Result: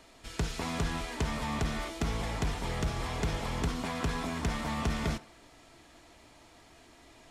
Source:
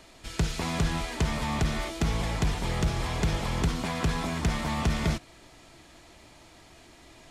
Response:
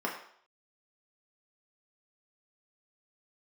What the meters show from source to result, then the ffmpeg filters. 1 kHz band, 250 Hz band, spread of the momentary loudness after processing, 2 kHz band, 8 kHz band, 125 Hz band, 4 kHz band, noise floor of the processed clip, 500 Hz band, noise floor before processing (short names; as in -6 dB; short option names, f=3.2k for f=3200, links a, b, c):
-3.0 dB, -4.5 dB, 2 LU, -3.5 dB, -4.5 dB, -6.0 dB, -4.5 dB, -58 dBFS, -3.0 dB, -54 dBFS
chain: -filter_complex "[0:a]asplit=2[a][b];[1:a]atrim=start_sample=2205[c];[b][c]afir=irnorm=-1:irlink=0,volume=-16.5dB[d];[a][d]amix=inputs=2:normalize=0,volume=-5dB"